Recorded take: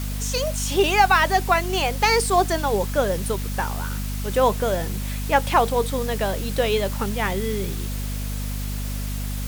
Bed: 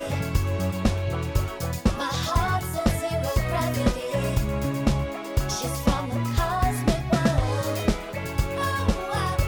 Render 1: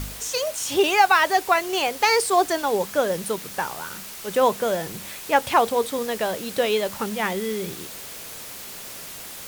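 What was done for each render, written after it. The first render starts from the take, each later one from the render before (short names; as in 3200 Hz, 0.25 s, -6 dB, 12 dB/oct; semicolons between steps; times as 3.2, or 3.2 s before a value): de-hum 50 Hz, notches 5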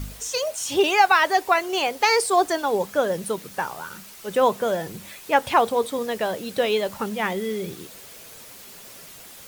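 denoiser 7 dB, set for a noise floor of -38 dBFS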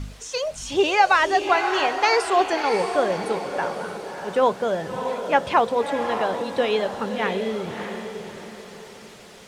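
air absorption 75 m; on a send: diffused feedback echo 0.617 s, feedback 41%, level -7 dB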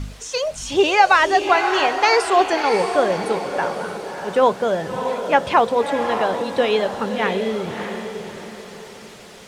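gain +3.5 dB; limiter -3 dBFS, peak gain reduction 1 dB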